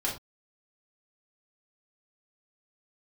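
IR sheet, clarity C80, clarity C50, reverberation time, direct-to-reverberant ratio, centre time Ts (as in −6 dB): 13.5 dB, 7.5 dB, non-exponential decay, −4.5 dB, 26 ms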